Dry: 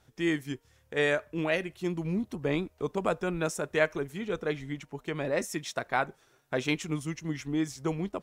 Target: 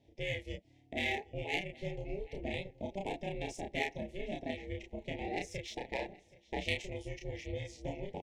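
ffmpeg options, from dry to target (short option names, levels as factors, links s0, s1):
-filter_complex "[0:a]acrossover=split=1000[s0][s1];[s0]acompressor=threshold=0.0158:ratio=6[s2];[s2][s1]amix=inputs=2:normalize=0,aeval=exprs='val(0)*sin(2*PI*200*n/s)':c=same,asplit=2[s3][s4];[s4]aecho=0:1:774|1548:0.0891|0.0232[s5];[s3][s5]amix=inputs=2:normalize=0,adynamicsmooth=sensitivity=3:basefreq=3700,asuperstop=centerf=1300:order=8:qfactor=1.2,asplit=2[s6][s7];[s7]adelay=32,volume=0.75[s8];[s6][s8]amix=inputs=2:normalize=0"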